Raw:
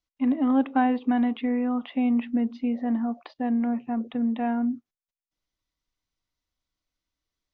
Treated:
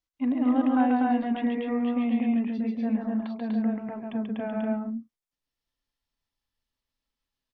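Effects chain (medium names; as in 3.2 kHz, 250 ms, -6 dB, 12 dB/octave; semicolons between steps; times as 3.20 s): pitch bend over the whole clip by -2.5 st starting unshifted; loudspeakers at several distances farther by 47 m -3 dB, 84 m -2 dB, 96 m -10 dB; trim -3 dB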